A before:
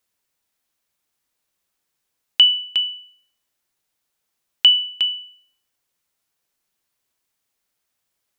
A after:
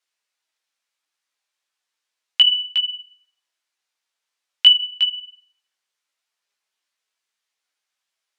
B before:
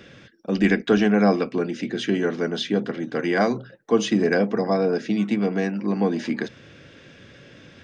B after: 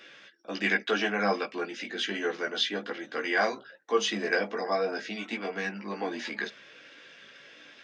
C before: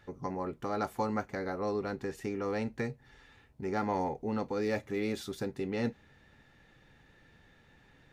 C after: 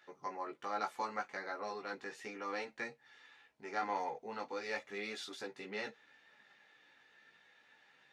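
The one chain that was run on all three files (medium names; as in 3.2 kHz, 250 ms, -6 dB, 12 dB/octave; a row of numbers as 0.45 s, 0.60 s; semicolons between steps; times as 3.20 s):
high-pass 470 Hz 6 dB/octave; tilt EQ +4.5 dB/octave; chorus voices 6, 0.32 Hz, delay 17 ms, depth 3.5 ms; in parallel at -6 dB: overload inside the chain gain 1.5 dB; on the sum: tape spacing loss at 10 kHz 24 dB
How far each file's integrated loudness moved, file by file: +0.5 LU, -7.5 LU, -6.5 LU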